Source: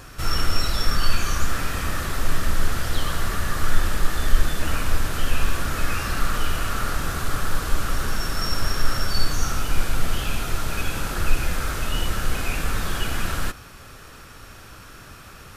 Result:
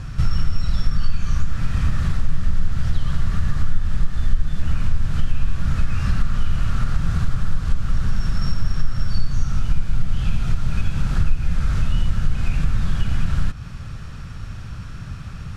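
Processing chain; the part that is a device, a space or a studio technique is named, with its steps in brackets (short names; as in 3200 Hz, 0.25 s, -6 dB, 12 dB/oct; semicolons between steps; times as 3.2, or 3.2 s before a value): jukebox (LPF 6500 Hz 12 dB/oct; resonant low shelf 240 Hz +13.5 dB, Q 1.5; compressor 3:1, threshold -15 dBFS, peak gain reduction 16.5 dB)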